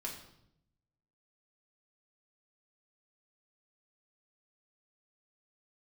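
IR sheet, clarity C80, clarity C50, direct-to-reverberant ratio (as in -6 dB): 9.5 dB, 6.5 dB, -3.0 dB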